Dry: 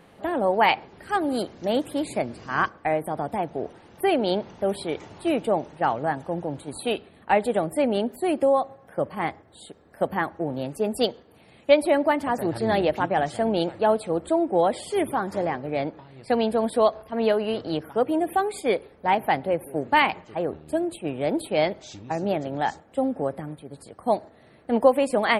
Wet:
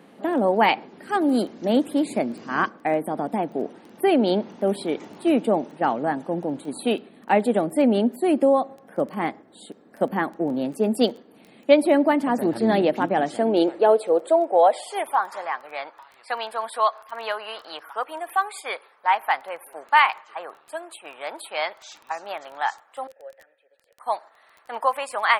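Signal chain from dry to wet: 23.07–24.00 s: vowel filter e; high-pass sweep 230 Hz -> 1.1 kHz, 13.14–15.43 s; crackle 10 per s -35 dBFS

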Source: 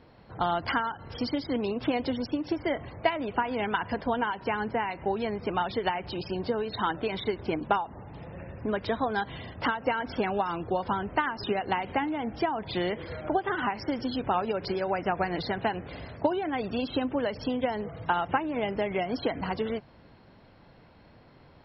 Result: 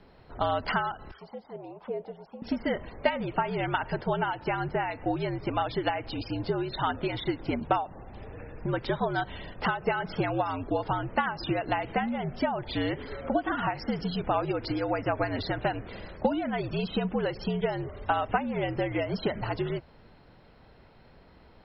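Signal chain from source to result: 1.11–2.42 s: auto-wah 530–1800 Hz, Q 3.4, down, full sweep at -22.5 dBFS; frequency shift -70 Hz

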